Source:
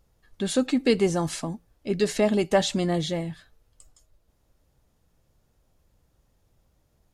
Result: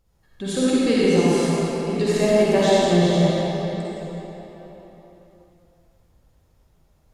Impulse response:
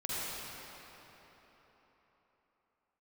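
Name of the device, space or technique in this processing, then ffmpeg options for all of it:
cathedral: -filter_complex "[0:a]asettb=1/sr,asplit=3[s0][s1][s2];[s0]atrim=end=0.994[s3];[s1]atrim=start=0.99:end=1.39,asetpts=PTS-STARTPTS,afade=t=in:d=0.004:c=qsin,afade=t=out:st=0.396:d=0.004:c=qsin,highpass=120[s4];[s2]atrim=start=1.386[s5];[s3][s4]acrossfade=d=0.004:c1=hsin:c2=qsin[s6];[s6][s5]acrossfade=d=0.004:c1=qsin:c2=hsin[s7];[1:a]atrim=start_sample=2205[s8];[s7][s8]afir=irnorm=-1:irlink=0"

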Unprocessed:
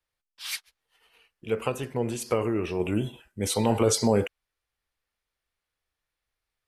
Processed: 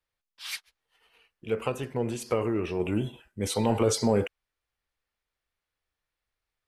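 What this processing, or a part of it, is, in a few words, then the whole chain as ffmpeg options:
parallel distortion: -filter_complex "[0:a]highshelf=f=5900:g=-5.5,asplit=2[s0][s1];[s1]asoftclip=type=hard:threshold=0.0708,volume=0.224[s2];[s0][s2]amix=inputs=2:normalize=0,volume=0.75"

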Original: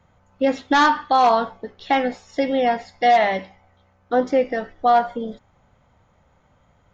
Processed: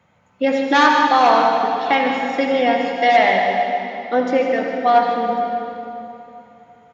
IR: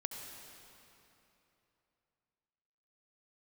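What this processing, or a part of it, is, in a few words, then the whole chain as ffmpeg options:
PA in a hall: -filter_complex "[0:a]highpass=130,equalizer=f=2400:t=o:w=0.74:g=6,aecho=1:1:152:0.316[s0];[1:a]atrim=start_sample=2205[s1];[s0][s1]afir=irnorm=-1:irlink=0,volume=1.41"

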